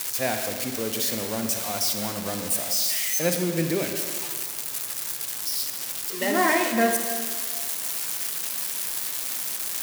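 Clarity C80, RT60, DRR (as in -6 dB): 6.5 dB, 1.8 s, 5.0 dB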